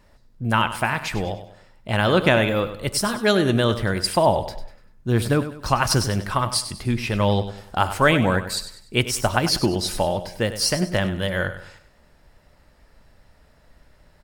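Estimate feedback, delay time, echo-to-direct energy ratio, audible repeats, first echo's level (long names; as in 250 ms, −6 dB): 38%, 98 ms, −11.5 dB, 3, −12.0 dB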